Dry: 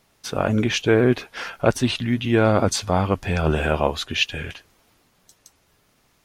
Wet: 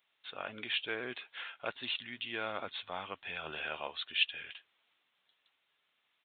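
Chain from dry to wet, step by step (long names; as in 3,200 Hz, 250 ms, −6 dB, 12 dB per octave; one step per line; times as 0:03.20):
downsampling to 8,000 Hz
first difference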